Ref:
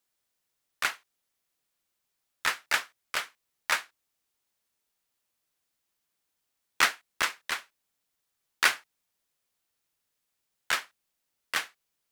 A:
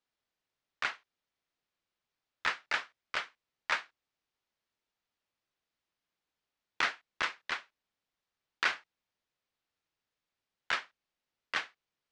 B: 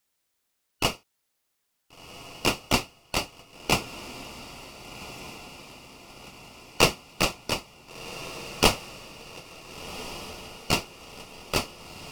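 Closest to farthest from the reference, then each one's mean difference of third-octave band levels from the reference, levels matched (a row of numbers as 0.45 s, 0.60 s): A, B; 5.0 dB, 9.5 dB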